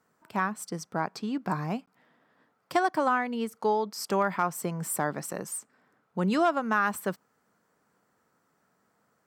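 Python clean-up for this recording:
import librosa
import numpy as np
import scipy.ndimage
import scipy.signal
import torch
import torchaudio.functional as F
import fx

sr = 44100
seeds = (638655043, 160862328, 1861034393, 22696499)

y = fx.fix_interpolate(x, sr, at_s=(1.86,), length_ms=15.0)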